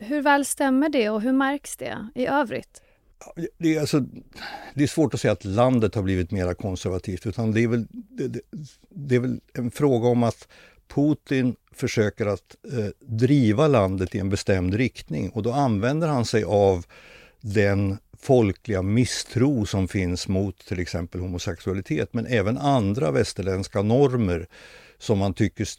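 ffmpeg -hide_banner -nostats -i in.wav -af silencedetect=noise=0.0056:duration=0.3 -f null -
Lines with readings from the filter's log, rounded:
silence_start: 2.78
silence_end: 3.21 | silence_duration: 0.43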